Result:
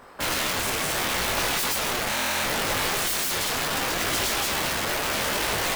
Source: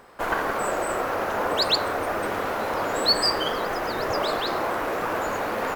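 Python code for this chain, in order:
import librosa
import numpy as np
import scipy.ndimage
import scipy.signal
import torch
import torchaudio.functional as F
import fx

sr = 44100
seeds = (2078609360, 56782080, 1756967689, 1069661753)

y = (np.mod(10.0 ** (23.0 / 20.0) * x + 1.0, 2.0) - 1.0) / 10.0 ** (23.0 / 20.0)
y = fx.buffer_glitch(y, sr, at_s=(2.09,), block=1024, repeats=14)
y = fx.detune_double(y, sr, cents=25)
y = y * 10.0 ** (6.0 / 20.0)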